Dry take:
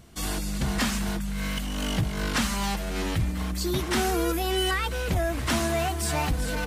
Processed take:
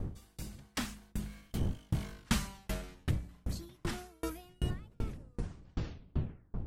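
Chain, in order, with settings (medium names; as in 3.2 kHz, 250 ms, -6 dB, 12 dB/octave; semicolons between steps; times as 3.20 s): tape stop on the ending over 1.76 s; Doppler pass-by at 2.34 s, 15 m/s, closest 6.8 m; wind noise 130 Hz -30 dBFS; in parallel at -2 dB: compressor with a negative ratio -36 dBFS; on the sum: sawtooth tremolo in dB decaying 2.6 Hz, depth 37 dB; trim -2.5 dB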